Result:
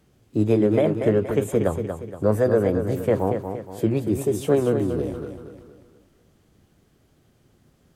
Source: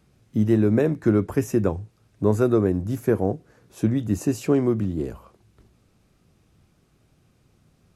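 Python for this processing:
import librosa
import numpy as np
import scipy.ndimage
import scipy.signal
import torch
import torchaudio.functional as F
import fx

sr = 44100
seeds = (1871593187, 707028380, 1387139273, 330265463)

y = fx.formant_shift(x, sr, semitones=4)
y = fx.echo_feedback(y, sr, ms=235, feedback_pct=42, wet_db=-7.5)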